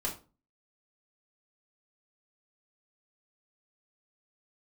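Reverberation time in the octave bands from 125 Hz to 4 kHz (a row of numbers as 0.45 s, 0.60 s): 0.45 s, 0.45 s, 0.35 s, 0.30 s, 0.25 s, 0.25 s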